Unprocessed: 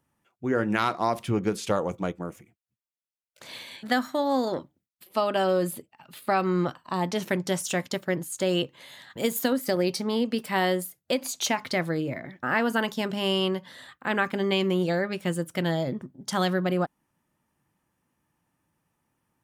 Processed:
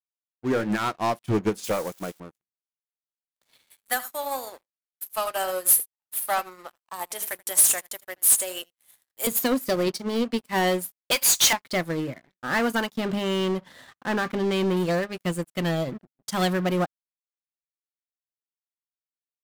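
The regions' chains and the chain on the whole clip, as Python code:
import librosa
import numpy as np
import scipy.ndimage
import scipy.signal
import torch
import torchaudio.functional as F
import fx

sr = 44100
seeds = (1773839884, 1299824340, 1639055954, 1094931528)

y = fx.chain(x, sr, fx.crossing_spikes(level_db=-25.5),
    fx.highpass(hz=160.0, slope=6),
    fx.high_shelf(hz=11000.0, db=-9.5), at=(1.64, 2.2))
y = fx.chain(y, sr, fx.highpass(hz=700.0, slope=12),
    fx.high_shelf_res(hz=7100.0, db=13.0, q=1.5),
    fx.echo_single(ms=81, db=-12.5), at=(3.7, 9.27))
y = fx.chain(y, sr, fx.high_shelf(hz=11000.0, db=-9.0),
    fx.hum_notches(base_hz=50, count=8), at=(9.84, 10.53))
y = fx.chain(y, sr, fx.highpass(hz=1300.0, slope=12),
    fx.power_curve(exponent=0.5), at=(11.11, 11.53))
y = fx.chain(y, sr, fx.high_shelf(hz=3400.0, db=-11.5),
    fx.env_flatten(amount_pct=50), at=(12.95, 14.77))
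y = fx.high_shelf(y, sr, hz=8000.0, db=8.5)
y = fx.leveller(y, sr, passes=5)
y = fx.upward_expand(y, sr, threshold_db=-25.0, expansion=2.5)
y = y * 10.0 ** (-9.0 / 20.0)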